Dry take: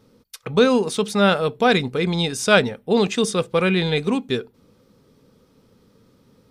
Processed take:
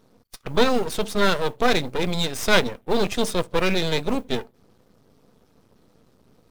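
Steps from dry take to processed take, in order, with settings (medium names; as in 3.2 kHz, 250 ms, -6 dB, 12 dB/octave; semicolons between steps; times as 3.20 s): coarse spectral quantiser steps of 15 dB; half-wave rectifier; modulation noise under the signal 33 dB; trim +2 dB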